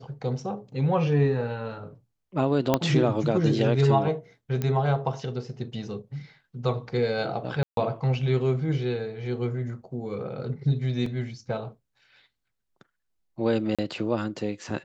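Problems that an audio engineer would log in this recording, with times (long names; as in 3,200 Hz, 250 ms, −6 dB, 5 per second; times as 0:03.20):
0:02.74: click −7 dBFS
0:04.62: click −15 dBFS
0:07.63–0:07.77: drop-out 142 ms
0:11.06: drop-out 3.2 ms
0:13.75–0:13.79: drop-out 36 ms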